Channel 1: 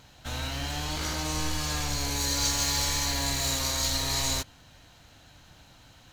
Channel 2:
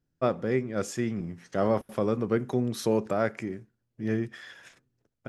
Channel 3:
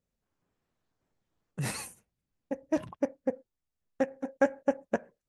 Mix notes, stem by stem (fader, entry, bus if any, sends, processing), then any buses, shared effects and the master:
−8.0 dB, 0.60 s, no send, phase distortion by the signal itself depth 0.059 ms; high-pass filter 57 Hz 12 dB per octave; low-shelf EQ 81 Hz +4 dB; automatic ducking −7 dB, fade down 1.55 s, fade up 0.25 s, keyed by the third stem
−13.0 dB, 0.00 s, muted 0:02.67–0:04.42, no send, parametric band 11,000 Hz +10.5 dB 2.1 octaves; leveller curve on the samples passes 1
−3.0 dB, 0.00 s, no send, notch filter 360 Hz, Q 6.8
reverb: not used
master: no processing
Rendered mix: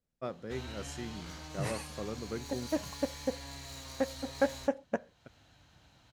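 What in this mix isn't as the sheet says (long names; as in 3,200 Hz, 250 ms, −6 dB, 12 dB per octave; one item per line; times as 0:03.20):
stem 1: entry 0.60 s → 0.25 s
stem 2: missing leveller curve on the samples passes 1
master: extra high-shelf EQ 8,800 Hz −9 dB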